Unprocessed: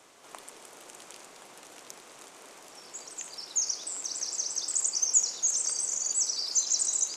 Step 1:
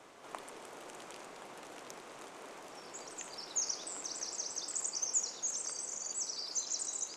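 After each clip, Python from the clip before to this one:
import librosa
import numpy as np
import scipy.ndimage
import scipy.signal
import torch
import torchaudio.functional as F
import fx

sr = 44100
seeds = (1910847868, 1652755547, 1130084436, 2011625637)

y = fx.high_shelf(x, sr, hz=3400.0, db=-11.5)
y = fx.rider(y, sr, range_db=3, speed_s=2.0)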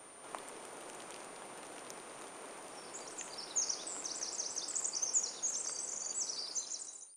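y = fx.fade_out_tail(x, sr, length_s=0.79)
y = y + 10.0 ** (-55.0 / 20.0) * np.sin(2.0 * np.pi * 9100.0 * np.arange(len(y)) / sr)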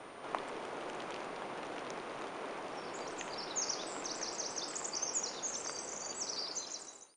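y = fx.air_absorb(x, sr, metres=150.0)
y = y * librosa.db_to_amplitude(8.0)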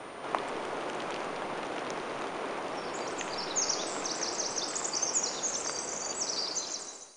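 y = fx.rev_freeverb(x, sr, rt60_s=1.5, hf_ratio=0.95, predelay_ms=45, drr_db=11.0)
y = y * librosa.db_to_amplitude(6.5)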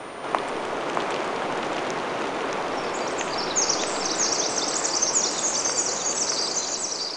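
y = x + 10.0 ** (-3.0 / 20.0) * np.pad(x, (int(625 * sr / 1000.0), 0))[:len(x)]
y = y * librosa.db_to_amplitude(7.0)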